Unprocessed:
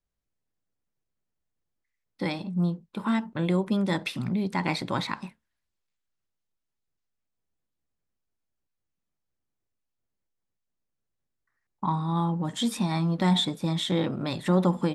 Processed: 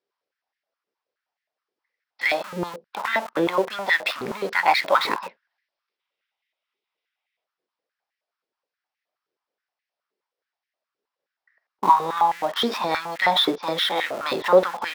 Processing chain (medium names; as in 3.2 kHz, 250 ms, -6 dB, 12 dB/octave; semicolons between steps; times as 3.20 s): elliptic low-pass 5.4 kHz; time-frequency box 6.00–7.44 s, 1.9–3.9 kHz +8 dB; in parallel at -7.5 dB: Schmitt trigger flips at -38.5 dBFS; on the sum: step-sequenced high-pass 9.5 Hz 400–1900 Hz; trim +5 dB